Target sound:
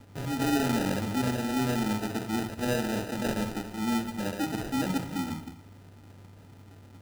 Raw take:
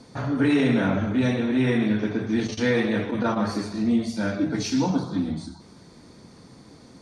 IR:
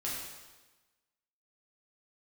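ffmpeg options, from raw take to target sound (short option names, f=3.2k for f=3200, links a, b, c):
-filter_complex "[0:a]aeval=exprs='val(0)+0.00562*sin(2*PI*1200*n/s)':c=same,acrusher=samples=40:mix=1:aa=0.000001,asplit=2[a][b];[1:a]atrim=start_sample=2205,adelay=65[c];[b][c]afir=irnorm=-1:irlink=0,volume=-18dB[d];[a][d]amix=inputs=2:normalize=0,volume=-6.5dB"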